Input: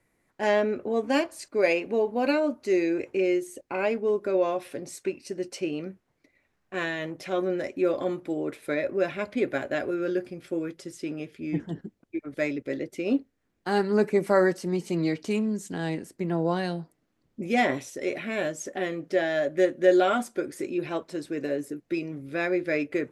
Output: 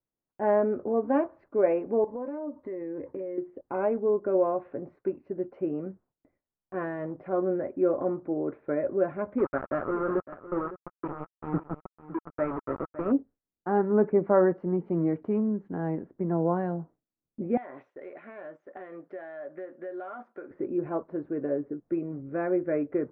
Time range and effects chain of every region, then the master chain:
2.04–3.38 ripple EQ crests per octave 1.1, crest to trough 11 dB + compressor 12:1, threshold -31 dBFS + expander -53 dBFS
9.38–13.12 sample gate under -29 dBFS + bell 1300 Hz +12.5 dB 0.22 oct + echo 0.558 s -15 dB
17.57–20.51 HPF 940 Hz 6 dB/oct + high shelf 2500 Hz +11.5 dB + compressor 5:1, threshold -34 dBFS
whole clip: LPF 1300 Hz 24 dB/oct; gate with hold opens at -52 dBFS

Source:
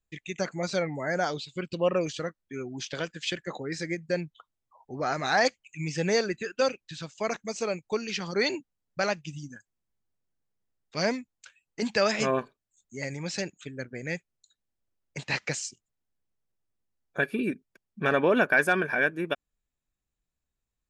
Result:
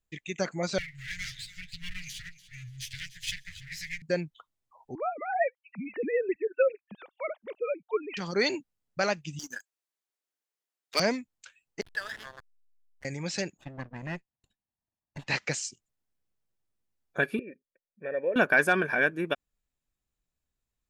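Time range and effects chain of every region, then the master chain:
0.78–4.02 minimum comb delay 10 ms + Chebyshev band-stop 140–1900 Hz, order 4 + feedback echo 0.292 s, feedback 29%, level -16.5 dB
4.95–8.17 sine-wave speech + photocell phaser 4.5 Hz
9.39–11 HPF 310 Hz 24 dB/oct + tilt shelf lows -5 dB, about 810 Hz + sample leveller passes 2
11.81–13.05 double band-pass 2400 Hz, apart 0.97 oct + high shelf 2500 Hz +2.5 dB + backlash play -35.5 dBFS
13.57–15.27 minimum comb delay 1.1 ms + LPF 1200 Hz 6 dB/oct + low shelf 62 Hz -10 dB
17.39–18.36 vocal tract filter e + notch 1200 Hz, Q 10
whole clip: dry

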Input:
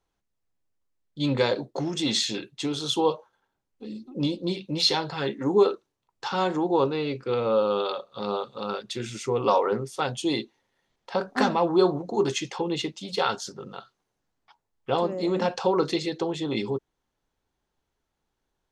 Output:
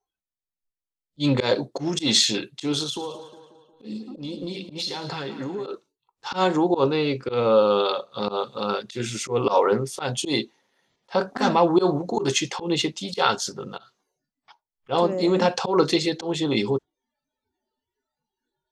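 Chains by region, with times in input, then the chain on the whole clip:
2.83–5.67 compressor 16:1, threshold -32 dBFS + split-band echo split 2900 Hz, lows 0.18 s, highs 0.11 s, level -12 dB
whole clip: spectral noise reduction 22 dB; high shelf 4100 Hz +4 dB; auto swell 0.104 s; gain +5 dB

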